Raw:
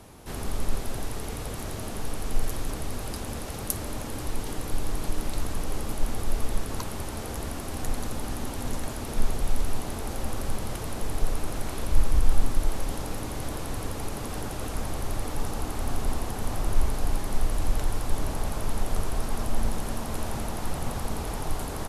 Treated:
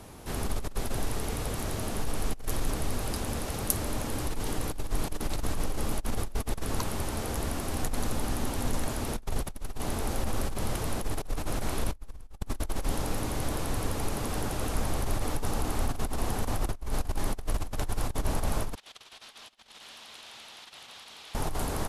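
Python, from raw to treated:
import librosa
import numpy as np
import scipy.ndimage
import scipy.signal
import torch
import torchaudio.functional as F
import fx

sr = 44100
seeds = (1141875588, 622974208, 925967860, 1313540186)

y = fx.over_compress(x, sr, threshold_db=-25.0, ratio=-0.5)
y = fx.bandpass_q(y, sr, hz=3400.0, q=2.1, at=(18.75, 21.35))
y = y * 10.0 ** (-1.5 / 20.0)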